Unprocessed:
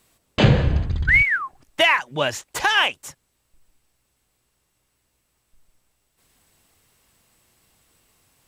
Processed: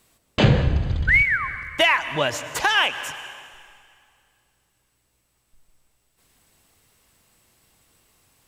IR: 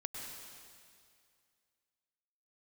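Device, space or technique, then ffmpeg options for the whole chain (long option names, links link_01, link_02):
ducked reverb: -filter_complex "[0:a]asplit=3[link_01][link_02][link_03];[1:a]atrim=start_sample=2205[link_04];[link_02][link_04]afir=irnorm=-1:irlink=0[link_05];[link_03]apad=whole_len=373538[link_06];[link_05][link_06]sidechaincompress=threshold=-24dB:ratio=8:attack=49:release=179,volume=-6dB[link_07];[link_01][link_07]amix=inputs=2:normalize=0,volume=-2dB"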